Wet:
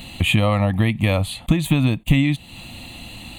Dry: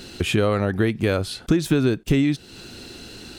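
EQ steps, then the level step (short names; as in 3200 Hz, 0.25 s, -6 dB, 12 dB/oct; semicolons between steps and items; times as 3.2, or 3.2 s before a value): fixed phaser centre 1500 Hz, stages 6; +7.0 dB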